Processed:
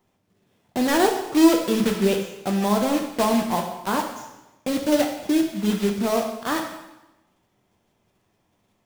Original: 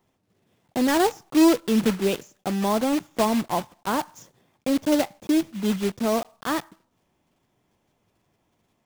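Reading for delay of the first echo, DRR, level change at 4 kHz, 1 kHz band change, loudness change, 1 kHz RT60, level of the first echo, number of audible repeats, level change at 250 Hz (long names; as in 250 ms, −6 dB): no echo audible, 2.5 dB, +2.0 dB, +2.0 dB, +1.5 dB, 1.0 s, no echo audible, no echo audible, +1.0 dB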